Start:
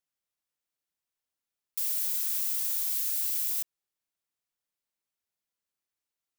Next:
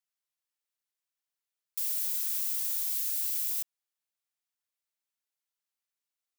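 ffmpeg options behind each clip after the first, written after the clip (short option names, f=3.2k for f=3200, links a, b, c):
-af "highpass=f=920:p=1,volume=-1.5dB"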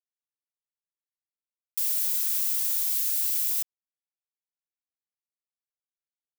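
-af "acrusher=bits=10:mix=0:aa=0.000001,volume=5dB"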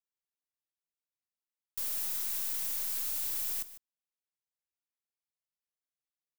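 -af "aeval=exprs='(tanh(20*val(0)+0.3)-tanh(0.3))/20':c=same,aecho=1:1:150:0.178,volume=-4dB"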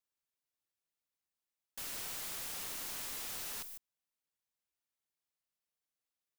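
-af "aeval=exprs='(mod(89.1*val(0)+1,2)-1)/89.1':c=same,volume=1.5dB"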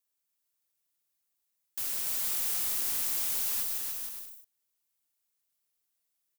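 -filter_complex "[0:a]crystalizer=i=1.5:c=0,asplit=2[a][b];[b]aecho=0:1:290|464|568.4|631|668.6:0.631|0.398|0.251|0.158|0.1[c];[a][c]amix=inputs=2:normalize=0"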